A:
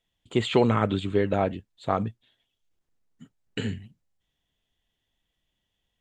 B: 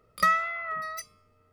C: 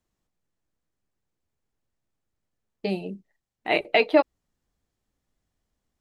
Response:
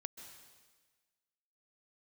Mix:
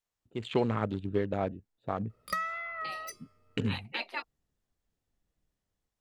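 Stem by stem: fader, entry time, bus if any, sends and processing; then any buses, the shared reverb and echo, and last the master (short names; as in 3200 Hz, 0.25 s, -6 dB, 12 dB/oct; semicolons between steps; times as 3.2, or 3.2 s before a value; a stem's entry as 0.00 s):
-10.5 dB, 0.00 s, no send, Wiener smoothing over 41 samples; AGC gain up to 14 dB; noise-modulated level, depth 60%
-4.5 dB, 2.10 s, no send, compressor 5:1, threshold -25 dBFS, peak gain reduction 7 dB
-5.5 dB, 0.00 s, no send, spectral gate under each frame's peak -15 dB weak; HPF 340 Hz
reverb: off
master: dry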